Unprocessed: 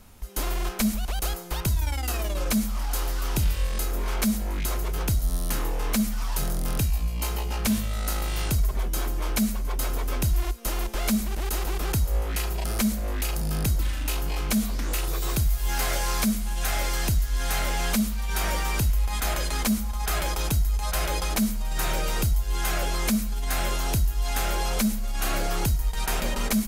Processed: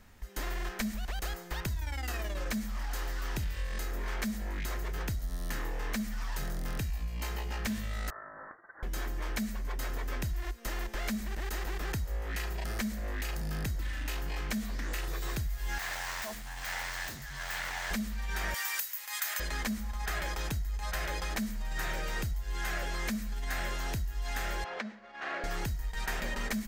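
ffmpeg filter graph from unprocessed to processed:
-filter_complex "[0:a]asettb=1/sr,asplit=3[a][b][c];[a]atrim=end=8.104[d];[b]atrim=start=8.1:end=8.83,asetpts=PTS-STARTPTS,afade=t=in:d=0.004:c=qsin,afade=t=out:st=0.726:d=0.004:c=qsin,highpass=f=1.2k:w=0.5412,highpass=f=1.2k:w=1.3066,lowpass=f=2.2k:t=q:w=0.5098,lowpass=f=2.2k:t=q:w=0.6013,lowpass=f=2.2k:t=q:w=0.9,lowpass=f=2.2k:t=q:w=2.563,afreqshift=-2600[e];[c]atrim=start=8.826[f];[d][e]acrossfade=d=0.004:c1=hsin:c2=qsin[g];[g][f]acrossfade=d=0.004:c1=qsin:c2=hsin,asettb=1/sr,asplit=3[h][i][j];[h]atrim=end=15.784[k];[i]atrim=start=15.78:end=17.91,asetpts=PTS-STARTPTS,afade=t=in:d=0.004:c=qsin,afade=t=out:st=2.126:d=0.004:c=qsin,aeval=exprs='0.0596*(abs(mod(val(0)/0.0596+3,4)-2)-1)':c=same,lowshelf=f=550:t=q:w=1.5:g=-8[l];[j]atrim=start=17.906[m];[k][l]acrossfade=d=0.004:c1=hsin:c2=qsin[n];[n][m]acrossfade=d=0.004:c1=qsin:c2=hsin,asettb=1/sr,asplit=3[o][p][q];[o]atrim=end=18.544[r];[p]atrim=start=18.54:end=19.4,asetpts=PTS-STARTPTS,afade=t=in:d=0.004:c=qsin,afade=t=out:st=0.856:d=0.004:c=qsin,highpass=1.1k,aemphasis=mode=production:type=50fm[s];[q]atrim=start=19.396[t];[r][s]acrossfade=d=0.004:c1=hsin:c2=qsin[u];[u][t]acrossfade=d=0.004:c1=qsin:c2=hsin,asettb=1/sr,asplit=3[v][w][x];[v]atrim=end=24.644[y];[w]atrim=start=24.64:end=25.44,asetpts=PTS-STARTPTS,afade=t=in:d=0.004:c=qsin,afade=t=out:st=0.796:d=0.004:c=qsin,highpass=410,lowpass=6.1k,adynamicsmooth=sensitivity=1.5:basefreq=2.1k[z];[x]atrim=start=25.436[aa];[y][z]acrossfade=d=0.004:c1=hsin:c2=qsin[ab];[ab][aa]acrossfade=d=0.004:c1=qsin:c2=hsin,equalizer=f=11k:t=o:w=0.51:g=-10.5,acompressor=threshold=-24dB:ratio=6,equalizer=f=1.8k:t=o:w=0.39:g=10.5,volume=-6.5dB"

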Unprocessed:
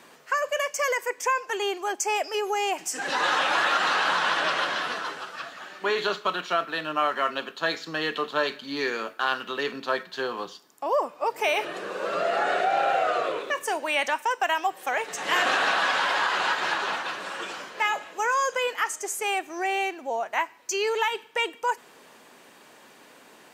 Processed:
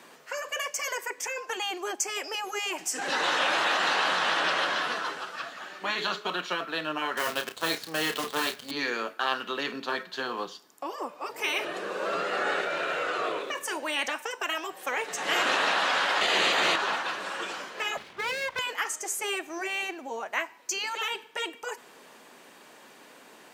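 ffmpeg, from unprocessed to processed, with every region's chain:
-filter_complex "[0:a]asettb=1/sr,asplit=3[a][b][c];[a]atrim=end=7.174[d];[b]atrim=start=7.17:end=8.71,asetpts=PTS-STARTPTS,afade=t=in:d=0.004:c=qsin,afade=t=out:st=1.536:d=0.004:c=qsin,acrusher=bits=6:dc=4:mix=0:aa=0.000001,asplit=2[e][f];[f]adelay=31,volume=-8dB[g];[e][g]amix=inputs=2:normalize=0,atrim=end_sample=67914[h];[c]atrim=start=8.706[i];[d][h]acrossfade=d=0.004:c1=hsin:c2=qsin[j];[j][i]acrossfade=d=0.004:c1=qsin:c2=hsin,asettb=1/sr,asplit=3[k][l][m];[k]atrim=end=16.214[n];[l]atrim=start=16.21:end=16.76,asetpts=PTS-STARTPTS,afade=t=in:d=0.004:c=qsin,afade=t=out:st=0.546:d=0.004:c=qsin,acontrast=78,bandreject=f=5.3k:w=6.9[o];[m]atrim=start=16.756[p];[n][o]acrossfade=d=0.004:c1=hsin:c2=qsin[q];[q][p]acrossfade=d=0.004:c1=qsin:c2=hsin,asettb=1/sr,asplit=3[r][s][t];[r]atrim=end=17.974[u];[s]atrim=start=17.97:end=18.59,asetpts=PTS-STARTPTS,afade=t=in:d=0.004:c=qsin,afade=t=out:st=0.616:d=0.004:c=qsin,lowpass=f=3k:w=0.5412,lowpass=f=3k:w=1.3066,aeval=exprs='abs(val(0))':c=same[v];[t]atrim=start=18.586[w];[u][v]acrossfade=d=0.004:c1=hsin:c2=qsin[x];[x][w]acrossfade=d=0.004:c1=qsin:c2=hsin,afftfilt=real='re*lt(hypot(re,im),0.282)':imag='im*lt(hypot(re,im),0.282)':win_size=1024:overlap=0.75,highpass=130"

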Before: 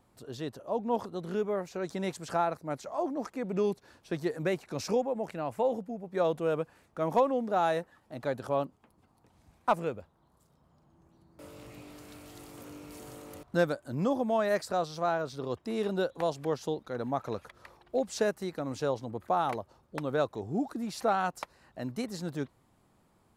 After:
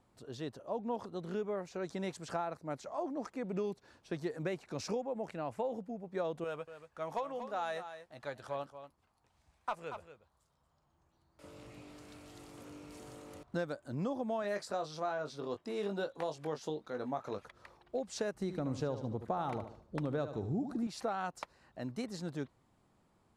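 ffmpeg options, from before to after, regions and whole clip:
-filter_complex "[0:a]asettb=1/sr,asplit=3[a][b][c];[a]atrim=end=6.444[d];[b]atrim=start=6.44:end=11.44,asetpts=PTS-STARTPTS,afade=t=in:d=0.004:c=qsin,afade=t=out:st=4.996:d=0.004:c=qsin,equalizer=f=230:t=o:w=2.7:g=-12,asplit=2[e][f];[f]adelay=14,volume=-12.5dB[g];[e][g]amix=inputs=2:normalize=0,atrim=end_sample=220500,aecho=1:1:234:0.251,atrim=end_sample=220500[h];[c]atrim=start=11.436[i];[d][h]acrossfade=d=0.004:c1=hsin:c2=qsin[j];[j][i]acrossfade=d=0.004:c1=qsin:c2=hsin,asettb=1/sr,asplit=3[k][l][m];[k]atrim=end=14.424[n];[l]atrim=start=14.42:end=17.42,asetpts=PTS-STARTPTS,afade=t=in:d=0.004:c=qsin,afade=t=out:st=2.996:d=0.004:c=qsin,lowshelf=f=110:g=-10.5,asplit=2[o][p];[p]adelay=20,volume=-7dB[q];[o][q]amix=inputs=2:normalize=0,atrim=end_sample=132300[r];[m]atrim=start=17.416[s];[n][r]acrossfade=d=0.004:c1=hsin:c2=qsin[t];[t][s]acrossfade=d=0.004:c1=qsin:c2=hsin,asettb=1/sr,asplit=3[u][v][w];[u]atrim=end=18.344[x];[v]atrim=start=18.34:end=20.87,asetpts=PTS-STARTPTS,afade=t=in:d=0.004:c=qsin,afade=t=out:st=2.526:d=0.004:c=qsin,lowshelf=f=300:g=10.5,aecho=1:1:74|148|222|296:0.266|0.0984|0.0364|0.0135,atrim=end_sample=111573[y];[w]atrim=start=20.866[z];[x][y]acrossfade=d=0.004:c1=hsin:c2=qsin[aa];[aa][z]acrossfade=d=0.004:c1=qsin:c2=hsin,lowpass=9k,acompressor=threshold=-28dB:ratio=6,volume=-4dB"

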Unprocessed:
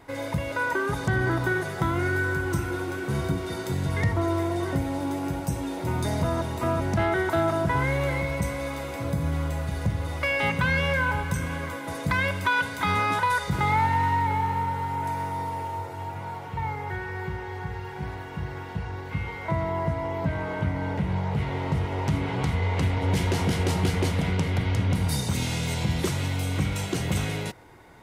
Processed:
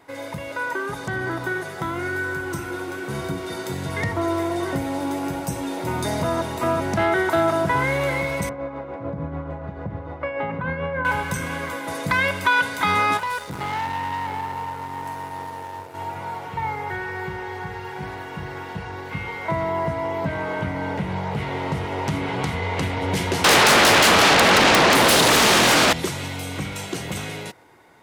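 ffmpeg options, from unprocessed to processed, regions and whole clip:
-filter_complex "[0:a]asettb=1/sr,asplit=3[a][b][c];[a]atrim=end=8.494[d];[b]atrim=start=8.49:end=11.05,asetpts=PTS-STARTPTS,afade=t=in:d=0.004:c=qsin,afade=t=out:st=2.556:d=0.004:c=qsin,lowpass=1.1k,tremolo=f=6.8:d=0.48[e];[c]atrim=start=11.046[f];[d][e]acrossfade=d=0.004:c1=hsin:c2=qsin[g];[g][f]acrossfade=d=0.004:c1=qsin:c2=hsin,asettb=1/sr,asplit=3[h][i][j];[h]atrim=end=13.174[k];[i]atrim=start=13.17:end=15.95,asetpts=PTS-STARTPTS,afade=t=in:d=0.004:c=qsin,afade=t=out:st=2.776:d=0.004:c=qsin,equalizer=f=2.6k:w=0.37:g=-4.5,aeval=exprs='(tanh(20*val(0)+0.65)-tanh(0.65))/20':c=same,aeval=exprs='sgn(val(0))*max(abs(val(0))-0.00316,0)':c=same[l];[j]atrim=start=15.946[m];[k][l]acrossfade=d=0.004:c1=hsin:c2=qsin[n];[n][m]acrossfade=d=0.004:c1=qsin:c2=hsin,asettb=1/sr,asplit=3[o][p][q];[o]atrim=end=23.444[r];[p]atrim=start=23.44:end=25.93,asetpts=PTS-STARTPTS,afade=t=in:d=0.004:c=qsin,afade=t=out:st=2.486:d=0.004:c=qsin,aecho=1:1:3:0.37,atrim=end_sample=109809,acrossover=split=1700|3700[s][t][u];[s]acompressor=threshold=-23dB:ratio=4[v];[t]acompressor=threshold=-44dB:ratio=4[w];[u]acompressor=threshold=-48dB:ratio=4[x];[v][w][x]amix=inputs=3:normalize=0,aeval=exprs='0.168*sin(PI/2*8.91*val(0)/0.168)':c=same[y];[q]atrim=start=25.926[z];[r][y]acrossfade=d=0.004:c1=hsin:c2=qsin[aa];[aa][z]acrossfade=d=0.004:c1=qsin:c2=hsin,highpass=f=250:p=1,dynaudnorm=f=990:g=7:m=5.5dB"

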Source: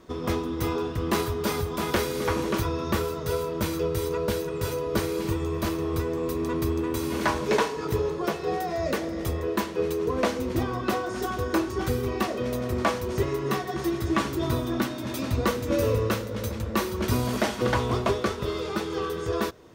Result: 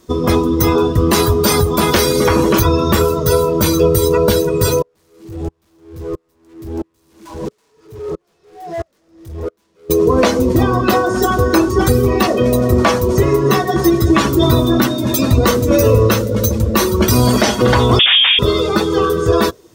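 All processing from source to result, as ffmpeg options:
-filter_complex "[0:a]asettb=1/sr,asplit=3[a][b][c];[a]atrim=end=4.824[d];[b]atrim=start=4.82:end=9.9,asetpts=PTS-STARTPTS,afade=t=in:d=0.004:c=qsin,afade=t=out:st=5.076:d=0.004:c=qsin,highshelf=f=5.5k:g=-10.5,volume=32dB,asoftclip=hard,volume=-32dB,aeval=exprs='val(0)*pow(10,-37*if(lt(mod(-1.5*n/s,1),2*abs(-1.5)/1000),1-mod(-1.5*n/s,1)/(2*abs(-1.5)/1000),(mod(-1.5*n/s,1)-2*abs(-1.5)/1000)/(1-2*abs(-1.5)/1000))/20)':c=same[e];[c]atrim=start=9.896[f];[d][e]acrossfade=d=0.004:c1=hsin:c2=qsin[g];[g][f]acrossfade=d=0.004:c1=qsin:c2=hsin,asettb=1/sr,asplit=3[h][i][j];[h]atrim=end=17.994[k];[i]atrim=start=17.99:end=18.39,asetpts=PTS-STARTPTS,afade=t=in:d=0.004:c=qsin,afade=t=out:st=0.396:d=0.004:c=qsin,aeval=exprs='(mod(11.9*val(0)+1,2)-1)/11.9':c=same,asplit=2[l][m];[m]highpass=f=720:p=1,volume=23dB,asoftclip=type=tanh:threshold=-21.5dB[n];[l][n]amix=inputs=2:normalize=0,lowpass=f=1.4k:p=1,volume=-6dB,lowpass=f=3.1k:t=q:w=0.5098,lowpass=f=3.1k:t=q:w=0.6013,lowpass=f=3.1k:t=q:w=0.9,lowpass=f=3.1k:t=q:w=2.563,afreqshift=-3700[o];[j]atrim=start=18.386[p];[k][o]acrossfade=d=0.004:c1=hsin:c2=qsin[q];[q][p]acrossfade=d=0.004:c1=qsin:c2=hsin,afftdn=nr=15:nf=-36,bass=f=250:g=1,treble=f=4k:g=14,alimiter=level_in=16.5dB:limit=-1dB:release=50:level=0:latency=1,volume=-1.5dB"

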